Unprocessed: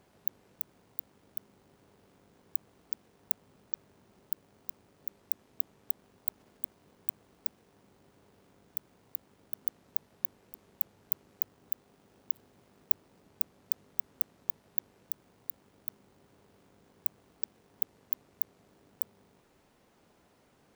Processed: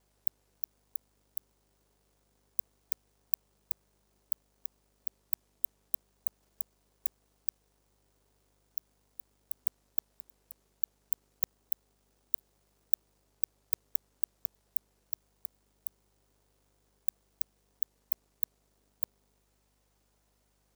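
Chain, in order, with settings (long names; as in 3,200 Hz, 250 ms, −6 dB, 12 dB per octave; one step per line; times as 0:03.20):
reversed piece by piece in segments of 50 ms
bass and treble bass −10 dB, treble +11 dB
mains hum 50 Hz, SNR 34 dB
level −11 dB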